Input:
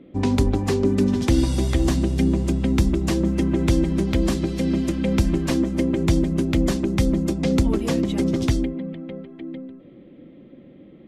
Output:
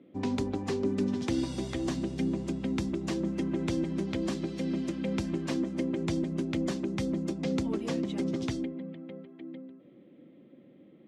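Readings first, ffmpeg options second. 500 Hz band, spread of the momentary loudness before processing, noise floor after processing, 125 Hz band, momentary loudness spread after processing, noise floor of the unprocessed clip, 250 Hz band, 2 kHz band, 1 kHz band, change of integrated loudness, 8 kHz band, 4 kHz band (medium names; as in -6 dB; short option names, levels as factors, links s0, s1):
-9.0 dB, 9 LU, -56 dBFS, -13.5 dB, 8 LU, -46 dBFS, -9.5 dB, -9.0 dB, -9.0 dB, -10.5 dB, -11.5 dB, -9.5 dB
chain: -af "highpass=140,lowpass=7600,volume=0.355"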